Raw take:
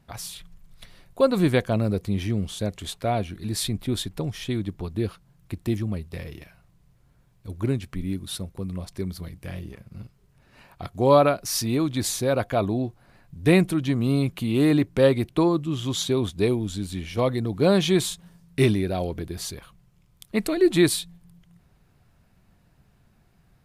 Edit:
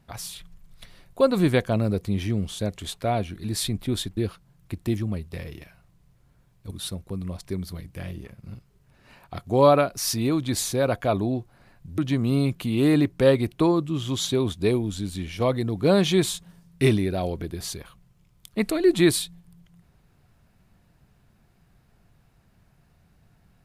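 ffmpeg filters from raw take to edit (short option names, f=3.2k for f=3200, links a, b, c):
-filter_complex "[0:a]asplit=4[a][b][c][d];[a]atrim=end=4.172[e];[b]atrim=start=4.968:end=7.512[f];[c]atrim=start=8.188:end=13.462[g];[d]atrim=start=13.748[h];[e][f]acrossfade=d=0.004:c1=hsin:c2=hsin[i];[i][g]acrossfade=d=0.004:c1=hsin:c2=hsin[j];[j][h]acrossfade=d=0.004:c1=hsin:c2=hsin"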